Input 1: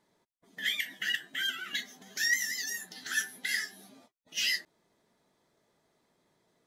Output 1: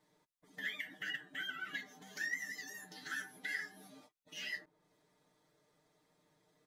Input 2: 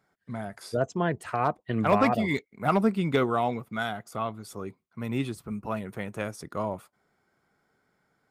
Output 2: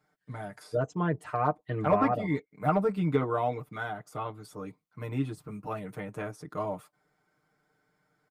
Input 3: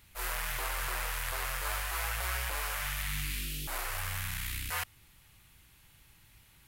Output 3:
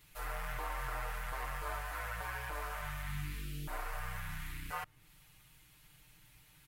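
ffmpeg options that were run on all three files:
-filter_complex "[0:a]aecho=1:1:6.6:0.97,acrossover=split=1800[s0][s1];[s1]acompressor=threshold=0.00447:ratio=6[s2];[s0][s2]amix=inputs=2:normalize=0,volume=0.596"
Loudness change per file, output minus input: -10.5 LU, -2.5 LU, -7.0 LU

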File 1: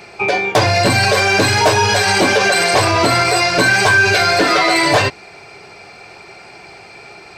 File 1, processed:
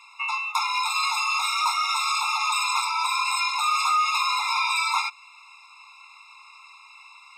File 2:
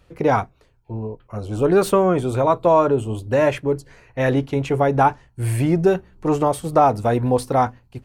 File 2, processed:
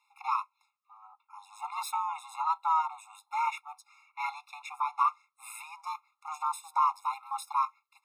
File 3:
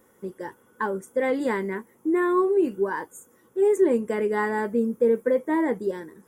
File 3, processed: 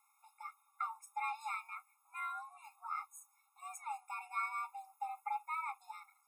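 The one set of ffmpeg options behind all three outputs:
-af "aeval=exprs='val(0)*sin(2*PI*320*n/s)':c=same,asuperstop=centerf=690:order=4:qfactor=1.8,afftfilt=real='re*eq(mod(floor(b*sr/1024/700),2),1)':imag='im*eq(mod(floor(b*sr/1024/700),2),1)':win_size=1024:overlap=0.75,volume=0.668"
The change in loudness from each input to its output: -10.5 LU, -13.0 LU, -19.0 LU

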